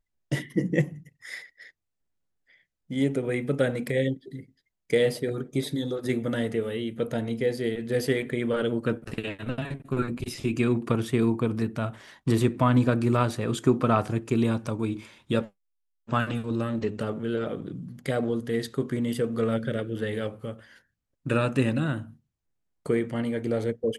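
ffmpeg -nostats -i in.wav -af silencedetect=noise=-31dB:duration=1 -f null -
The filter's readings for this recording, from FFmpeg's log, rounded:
silence_start: 1.38
silence_end: 2.91 | silence_duration: 1.53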